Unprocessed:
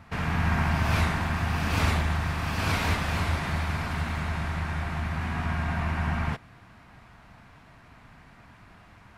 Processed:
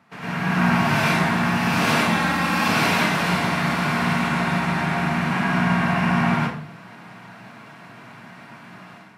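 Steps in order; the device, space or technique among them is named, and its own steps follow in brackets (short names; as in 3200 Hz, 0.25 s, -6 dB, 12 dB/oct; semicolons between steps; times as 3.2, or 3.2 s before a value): 2–2.58 comb 3.7 ms, depth 90%; far laptop microphone (reverb RT60 0.55 s, pre-delay 92 ms, DRR -6.5 dB; HPF 150 Hz 24 dB/oct; AGC gain up to 9 dB); gain -5 dB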